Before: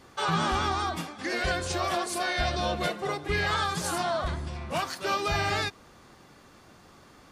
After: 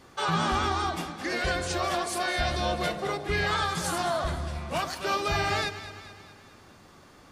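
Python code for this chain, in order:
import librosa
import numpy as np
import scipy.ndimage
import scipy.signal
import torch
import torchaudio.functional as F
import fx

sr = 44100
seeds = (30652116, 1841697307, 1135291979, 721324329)

y = fx.echo_alternate(x, sr, ms=106, hz=820.0, feedback_pct=73, wet_db=-10.0)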